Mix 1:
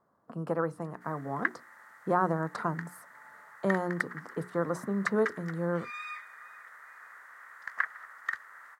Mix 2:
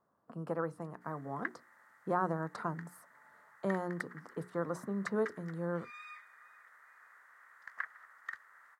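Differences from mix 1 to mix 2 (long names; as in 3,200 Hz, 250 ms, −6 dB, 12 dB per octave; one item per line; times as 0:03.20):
speech −5.5 dB
background −9.5 dB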